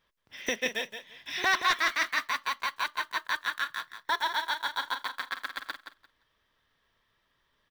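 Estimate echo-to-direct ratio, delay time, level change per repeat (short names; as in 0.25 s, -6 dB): -9.0 dB, 0.173 s, -15.0 dB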